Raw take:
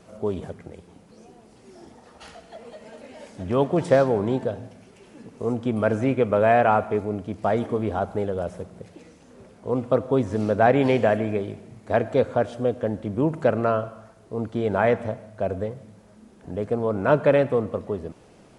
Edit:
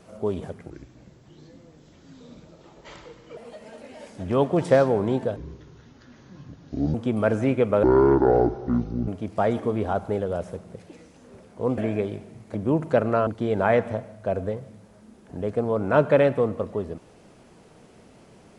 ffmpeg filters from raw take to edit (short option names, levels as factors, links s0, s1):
-filter_complex "[0:a]asplit=10[s0][s1][s2][s3][s4][s5][s6][s7][s8][s9];[s0]atrim=end=0.704[s10];[s1]atrim=start=0.7:end=2.57,asetpts=PTS-STARTPTS,asetrate=30870,aresample=44100,atrim=end_sample=117810,asetpts=PTS-STARTPTS[s11];[s2]atrim=start=2.566:end=4.564[s12];[s3]atrim=start=4.56:end=5.54,asetpts=PTS-STARTPTS,asetrate=27342,aresample=44100,atrim=end_sample=69706,asetpts=PTS-STARTPTS[s13];[s4]atrim=start=5.536:end=6.434[s14];[s5]atrim=start=6.43:end=7.14,asetpts=PTS-STARTPTS,asetrate=25137,aresample=44100[s15];[s6]atrim=start=7.136:end=9.842[s16];[s7]atrim=start=11.138:end=11.912[s17];[s8]atrim=start=13.058:end=13.782[s18];[s9]atrim=start=14.408[s19];[s10][s11]acrossfade=d=0.004:c1=hsin:c2=hsin[s20];[s20][s12]acrossfade=d=0.004:c1=hsin:c2=hsin[s21];[s21][s13]acrossfade=d=0.004:c1=hsin:c2=hsin[s22];[s22][s14]acrossfade=d=0.004:c1=hsin:c2=hsin[s23];[s23][s15]acrossfade=d=0.004:c1=hsin:c2=hsin[s24];[s24][s16]acrossfade=d=0.004:c1=hsin:c2=hsin[s25];[s25][s17]acrossfade=d=0.004:c1=hsin:c2=hsin[s26];[s26][s18]acrossfade=d=0.004:c1=hsin:c2=hsin[s27];[s27][s19]acrossfade=d=0.004:c1=hsin:c2=hsin"